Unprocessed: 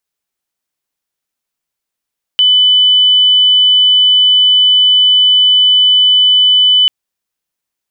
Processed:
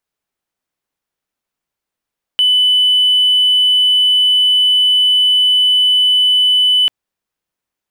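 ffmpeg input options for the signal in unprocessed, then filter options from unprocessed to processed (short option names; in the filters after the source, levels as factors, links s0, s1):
-f lavfi -i "aevalsrc='0.562*sin(2*PI*3000*t)':d=4.49:s=44100"
-filter_complex "[0:a]highshelf=f=2800:g=-9,asplit=2[s0][s1];[s1]asoftclip=type=hard:threshold=0.119,volume=0.422[s2];[s0][s2]amix=inputs=2:normalize=0"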